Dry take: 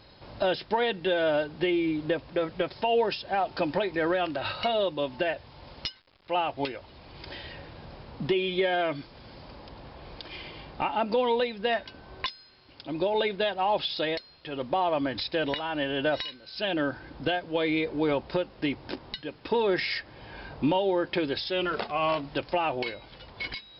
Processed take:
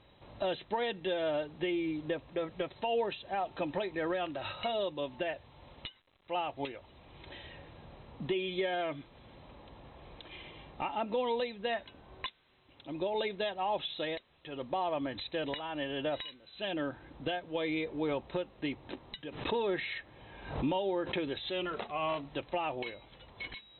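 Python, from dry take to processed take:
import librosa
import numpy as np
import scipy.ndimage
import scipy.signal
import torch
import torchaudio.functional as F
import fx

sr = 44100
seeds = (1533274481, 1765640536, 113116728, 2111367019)

y = fx.brickwall_lowpass(x, sr, high_hz=4100.0)
y = fx.notch(y, sr, hz=1500.0, q=11.0)
y = fx.pre_swell(y, sr, db_per_s=87.0, at=(19.23, 21.63))
y = F.gain(torch.from_numpy(y), -7.0).numpy()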